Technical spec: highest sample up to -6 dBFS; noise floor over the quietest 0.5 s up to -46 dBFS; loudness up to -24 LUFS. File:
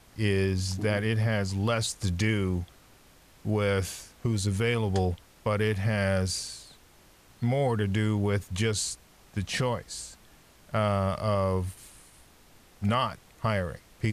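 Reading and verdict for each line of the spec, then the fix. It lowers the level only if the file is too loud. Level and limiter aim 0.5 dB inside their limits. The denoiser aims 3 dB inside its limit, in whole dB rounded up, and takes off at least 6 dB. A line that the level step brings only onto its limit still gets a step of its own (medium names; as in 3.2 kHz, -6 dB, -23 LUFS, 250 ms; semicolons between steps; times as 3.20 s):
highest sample -15.0 dBFS: pass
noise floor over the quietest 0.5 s -57 dBFS: pass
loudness -29.0 LUFS: pass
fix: none needed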